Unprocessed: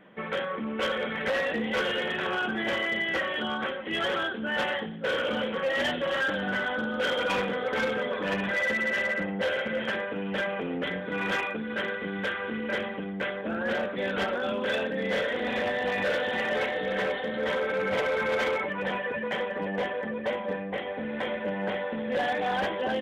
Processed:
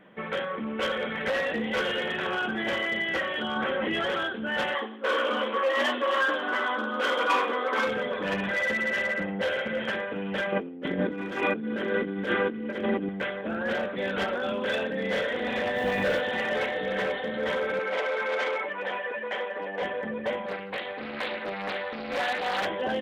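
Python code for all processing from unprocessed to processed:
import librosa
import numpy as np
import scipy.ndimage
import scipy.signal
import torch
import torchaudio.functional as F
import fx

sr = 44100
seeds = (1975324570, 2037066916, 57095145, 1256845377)

y = fx.chain(x, sr, fx.high_shelf(hz=3500.0, db=-7.0),
    fx.env_flatten(amount_pct=100), at=(3.56, 4.1))
y = fx.chain(y, sr, fx.brickwall_highpass(low_hz=220.0),
    fx.peak_eq(hz=1100.0, db=14.0, octaves=0.29),
    fx.doubler(ms=13.0, db=-8.0), at=(4.75, 7.87))
y = fx.chain(y, sr, fx.peak_eq(hz=290.0, db=14.5, octaves=1.4),
    fx.over_compress(threshold_db=-28.0, ratio=-0.5), at=(10.52, 13.09))
y = fx.low_shelf(y, sr, hz=350.0, db=6.5, at=(15.75, 16.19), fade=0.02)
y = fx.dmg_noise_colour(y, sr, seeds[0], colour='pink', level_db=-54.0, at=(15.75, 16.19), fade=0.02)
y = fx.chain(y, sr, fx.highpass(hz=410.0, slope=12),
    fx.air_absorb(metres=57.0), at=(17.79, 19.82))
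y = fx.chain(y, sr, fx.tilt_eq(slope=2.5),
    fx.hum_notches(base_hz=60, count=10),
    fx.doppler_dist(depth_ms=0.38), at=(20.46, 22.65))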